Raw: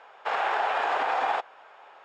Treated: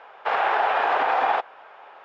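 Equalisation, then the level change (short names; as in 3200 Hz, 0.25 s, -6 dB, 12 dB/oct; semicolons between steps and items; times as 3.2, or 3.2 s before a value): air absorption 150 m; +5.5 dB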